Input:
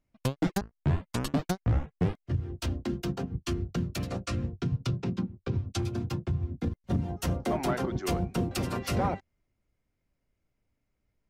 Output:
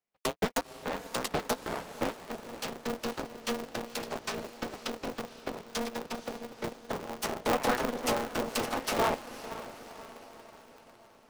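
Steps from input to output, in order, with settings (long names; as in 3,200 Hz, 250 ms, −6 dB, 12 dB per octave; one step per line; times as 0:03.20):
harmonic generator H 3 −26 dB, 7 −22 dB, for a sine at −19 dBFS
Butterworth high-pass 320 Hz 48 dB per octave
feedback delay with all-pass diffusion 509 ms, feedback 54%, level −13 dB
ring modulator with a square carrier 120 Hz
level +3.5 dB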